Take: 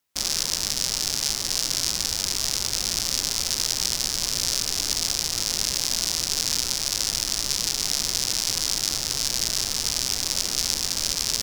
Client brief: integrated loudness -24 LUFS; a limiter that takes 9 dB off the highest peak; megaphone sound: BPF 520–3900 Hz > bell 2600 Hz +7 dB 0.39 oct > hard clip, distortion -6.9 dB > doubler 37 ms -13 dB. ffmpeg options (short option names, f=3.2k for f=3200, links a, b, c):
-filter_complex "[0:a]alimiter=limit=-12.5dB:level=0:latency=1,highpass=520,lowpass=3.9k,equalizer=f=2.6k:t=o:w=0.39:g=7,asoftclip=type=hard:threshold=-28.5dB,asplit=2[a][b];[b]adelay=37,volume=-13dB[c];[a][c]amix=inputs=2:normalize=0,volume=13.5dB"